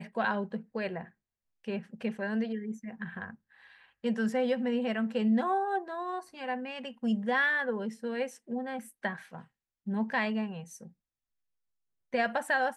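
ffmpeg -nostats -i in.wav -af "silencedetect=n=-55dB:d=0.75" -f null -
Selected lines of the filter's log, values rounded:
silence_start: 10.92
silence_end: 12.13 | silence_duration: 1.21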